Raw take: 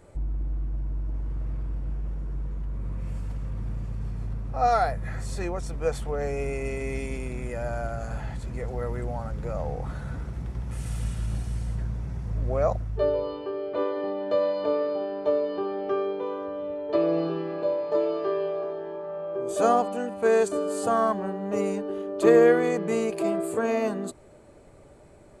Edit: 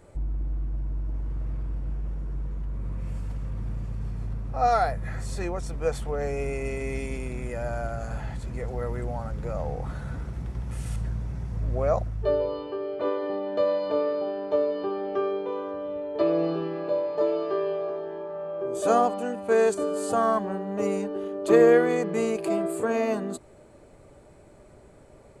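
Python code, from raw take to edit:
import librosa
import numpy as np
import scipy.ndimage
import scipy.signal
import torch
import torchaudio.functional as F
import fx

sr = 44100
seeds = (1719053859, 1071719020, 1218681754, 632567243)

y = fx.edit(x, sr, fx.cut(start_s=10.96, length_s=0.74), tone=tone)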